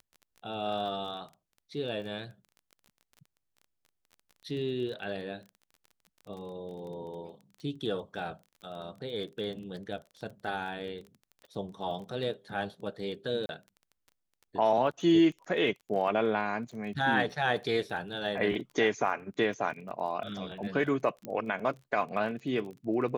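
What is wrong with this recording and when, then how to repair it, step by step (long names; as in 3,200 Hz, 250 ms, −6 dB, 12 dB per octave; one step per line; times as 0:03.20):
surface crackle 22 per second −41 dBFS
0:13.46–0:13.49: drop-out 31 ms
0:21.25: click −24 dBFS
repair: click removal
repair the gap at 0:13.46, 31 ms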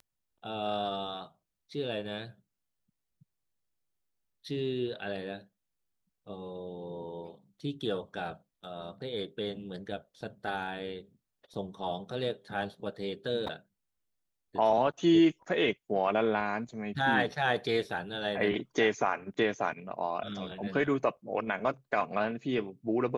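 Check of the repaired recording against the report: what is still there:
none of them is left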